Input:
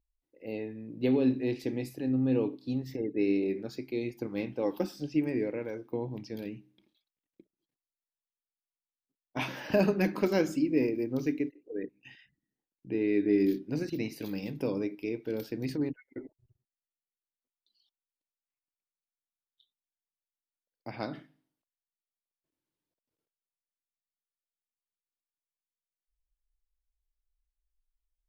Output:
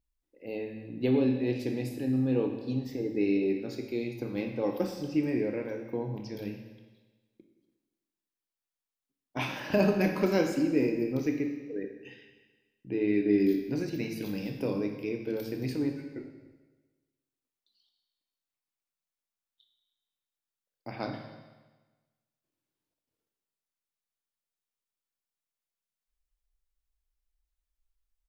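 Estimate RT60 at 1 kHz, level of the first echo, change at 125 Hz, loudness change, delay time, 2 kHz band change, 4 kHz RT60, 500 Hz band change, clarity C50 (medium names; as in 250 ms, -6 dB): 1.3 s, -22.5 dB, +2.0 dB, +1.0 dB, 289 ms, +1.5 dB, 1.2 s, +1.0 dB, 6.0 dB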